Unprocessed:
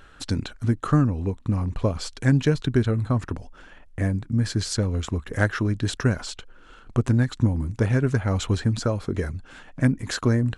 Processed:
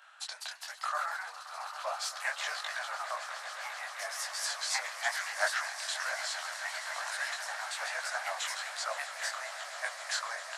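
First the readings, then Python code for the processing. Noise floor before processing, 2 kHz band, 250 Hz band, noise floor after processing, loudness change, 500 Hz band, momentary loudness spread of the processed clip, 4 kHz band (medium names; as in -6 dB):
-49 dBFS, 0.0 dB, under -40 dB, -47 dBFS, -11.0 dB, -14.5 dB, 8 LU, -0.5 dB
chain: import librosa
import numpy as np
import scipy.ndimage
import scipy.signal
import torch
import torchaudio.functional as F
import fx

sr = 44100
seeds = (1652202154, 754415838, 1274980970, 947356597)

p1 = scipy.signal.sosfilt(scipy.signal.butter(12, 630.0, 'highpass', fs=sr, output='sos'), x)
p2 = fx.echo_pitch(p1, sr, ms=225, semitones=2, count=2, db_per_echo=-3.0)
p3 = p2 + fx.echo_swell(p2, sr, ms=132, loudest=8, wet_db=-16.0, dry=0)
y = fx.detune_double(p3, sr, cents=39)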